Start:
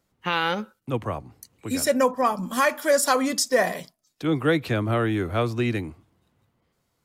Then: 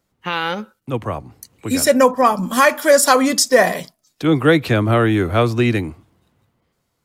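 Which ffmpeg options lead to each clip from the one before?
ffmpeg -i in.wav -af "dynaudnorm=framelen=220:gausssize=11:maxgain=7dB,volume=2dB" out.wav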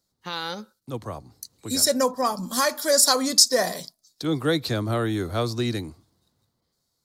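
ffmpeg -i in.wav -af "highshelf=frequency=3400:width_type=q:width=3:gain=7.5,volume=-9.5dB" out.wav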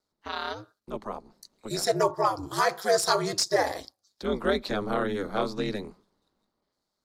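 ffmpeg -i in.wav -filter_complex "[0:a]aeval=exprs='val(0)*sin(2*PI*100*n/s)':channel_layout=same,asplit=2[link_01][link_02];[link_02]highpass=frequency=720:poles=1,volume=10dB,asoftclip=type=tanh:threshold=-2dB[link_03];[link_01][link_03]amix=inputs=2:normalize=0,lowpass=frequency=1400:poles=1,volume=-6dB" out.wav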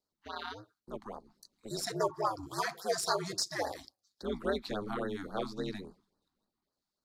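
ffmpeg -i in.wav -af "afftfilt=real='re*(1-between(b*sr/1024,440*pow(2800/440,0.5+0.5*sin(2*PI*3.6*pts/sr))/1.41,440*pow(2800/440,0.5+0.5*sin(2*PI*3.6*pts/sr))*1.41))':imag='im*(1-between(b*sr/1024,440*pow(2800/440,0.5+0.5*sin(2*PI*3.6*pts/sr))/1.41,440*pow(2800/440,0.5+0.5*sin(2*PI*3.6*pts/sr))*1.41))':win_size=1024:overlap=0.75,volume=-7dB" out.wav

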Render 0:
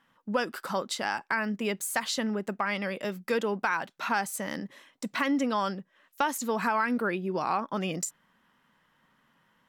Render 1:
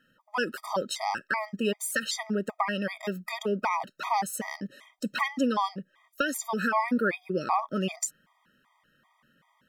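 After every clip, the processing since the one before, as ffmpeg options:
ffmpeg -i in.wav -af "afftfilt=real='re*gt(sin(2*PI*2.6*pts/sr)*(1-2*mod(floor(b*sr/1024/630),2)),0)':imag='im*gt(sin(2*PI*2.6*pts/sr)*(1-2*mod(floor(b*sr/1024/630),2)),0)':win_size=1024:overlap=0.75,volume=3.5dB" out.wav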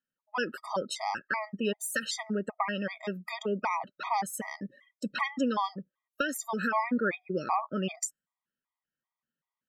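ffmpeg -i in.wav -af "afftdn=noise_reduction=26:noise_floor=-46,volume=-2.5dB" out.wav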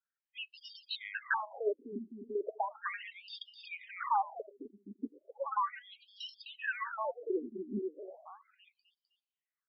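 ffmpeg -i in.wav -filter_complex "[0:a]asplit=2[link_01][link_02];[link_02]aecho=0:1:256|512|768|1024|1280:0.398|0.171|0.0736|0.0317|0.0136[link_03];[link_01][link_03]amix=inputs=2:normalize=0,afftfilt=real='re*between(b*sr/1024,280*pow(4000/280,0.5+0.5*sin(2*PI*0.36*pts/sr))/1.41,280*pow(4000/280,0.5+0.5*sin(2*PI*0.36*pts/sr))*1.41)':imag='im*between(b*sr/1024,280*pow(4000/280,0.5+0.5*sin(2*PI*0.36*pts/sr))/1.41,280*pow(4000/280,0.5+0.5*sin(2*PI*0.36*pts/sr))*1.41)':win_size=1024:overlap=0.75" out.wav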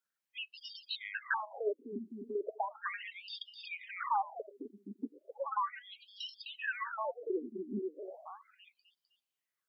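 ffmpeg -i in.wav -filter_complex "[0:a]highpass=120,asplit=2[link_01][link_02];[link_02]acompressor=threshold=-46dB:ratio=6,volume=1dB[link_03];[link_01][link_03]amix=inputs=2:normalize=0,volume=-3dB" out.wav

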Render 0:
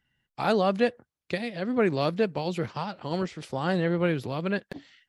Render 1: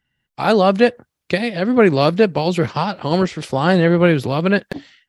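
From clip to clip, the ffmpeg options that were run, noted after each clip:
ffmpeg -i in.wav -af "dynaudnorm=framelen=160:gausssize=5:maxgain=11.5dB,volume=1.5dB" out.wav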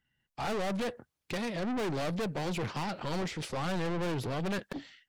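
ffmpeg -i in.wav -af "aeval=exprs='(tanh(17.8*val(0)+0.15)-tanh(0.15))/17.8':channel_layout=same,volume=-6dB" out.wav

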